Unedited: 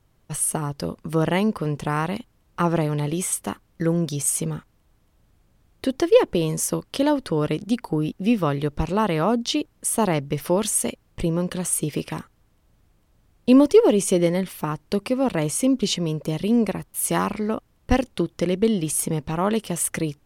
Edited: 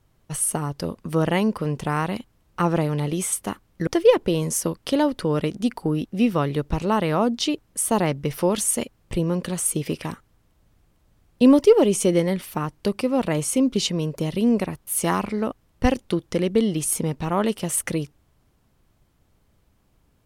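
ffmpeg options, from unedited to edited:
-filter_complex "[0:a]asplit=2[s0][s1];[s0]atrim=end=3.872[s2];[s1]atrim=start=5.938[s3];[s2][s3]acrossfade=d=0.004:c1=hsin:c2=hsin"

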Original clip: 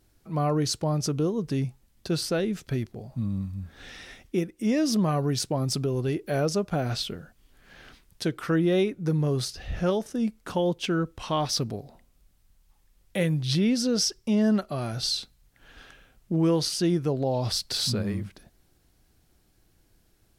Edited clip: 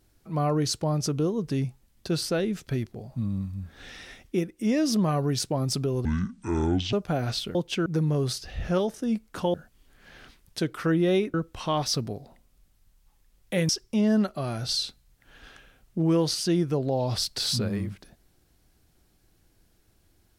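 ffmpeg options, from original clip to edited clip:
-filter_complex "[0:a]asplit=8[s0][s1][s2][s3][s4][s5][s6][s7];[s0]atrim=end=6.054[s8];[s1]atrim=start=6.05:end=6.56,asetpts=PTS-STARTPTS,asetrate=25578,aresample=44100[s9];[s2]atrim=start=6.556:end=7.182[s10];[s3]atrim=start=10.658:end=10.972[s11];[s4]atrim=start=8.978:end=10.662[s12];[s5]atrim=start=7.178:end=8.982[s13];[s6]atrim=start=10.968:end=13.322[s14];[s7]atrim=start=14.028[s15];[s8][s9]acrossfade=d=0.004:c1=hsin:c2=hsin[s16];[s16][s10]acrossfade=d=0.004:c1=hsin:c2=hsin[s17];[s17][s11]acrossfade=d=0.004:c1=hsin:c2=hsin[s18];[s18][s12]acrossfade=d=0.004:c1=hsin:c2=hsin[s19];[s19][s13]acrossfade=d=0.004:c1=hsin:c2=hsin[s20];[s20][s14]acrossfade=d=0.004:c1=hsin:c2=hsin[s21];[s21][s15]acrossfade=d=0.004:c1=hsin:c2=hsin"

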